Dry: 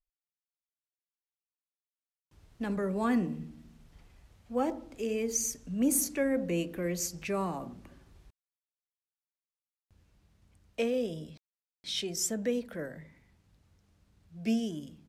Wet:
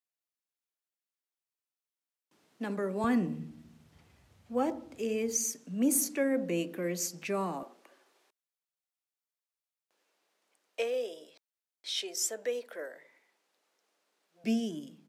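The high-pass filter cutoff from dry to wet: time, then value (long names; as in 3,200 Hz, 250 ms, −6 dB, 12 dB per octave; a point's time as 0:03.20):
high-pass filter 24 dB per octave
210 Hz
from 0:03.04 77 Hz
from 0:05.37 180 Hz
from 0:07.63 410 Hz
from 0:14.44 180 Hz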